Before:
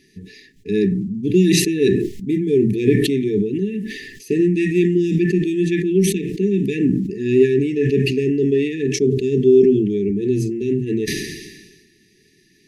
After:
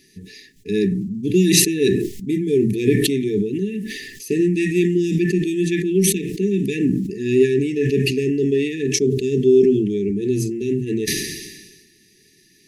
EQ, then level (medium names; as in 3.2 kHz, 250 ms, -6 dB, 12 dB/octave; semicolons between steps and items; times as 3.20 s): treble shelf 4.8 kHz +11 dB; -1.5 dB